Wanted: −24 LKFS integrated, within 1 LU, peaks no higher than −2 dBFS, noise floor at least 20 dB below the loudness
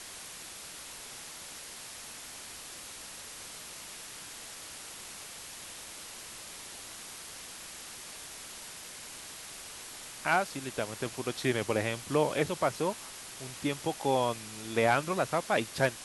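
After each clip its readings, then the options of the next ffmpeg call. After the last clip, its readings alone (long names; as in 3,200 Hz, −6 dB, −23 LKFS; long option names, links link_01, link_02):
background noise floor −46 dBFS; target noise floor −55 dBFS; integrated loudness −35.0 LKFS; sample peak −12.5 dBFS; target loudness −24.0 LKFS
→ -af "afftdn=noise_reduction=9:noise_floor=-46"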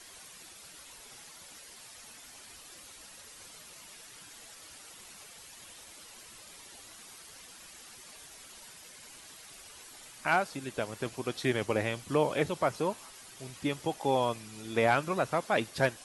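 background noise floor −52 dBFS; integrated loudness −31.0 LKFS; sample peak −12.5 dBFS; target loudness −24.0 LKFS
→ -af "volume=7dB"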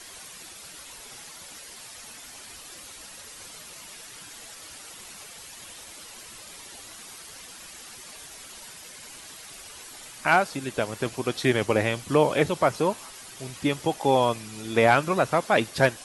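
integrated loudness −24.0 LKFS; sample peak −5.5 dBFS; background noise floor −45 dBFS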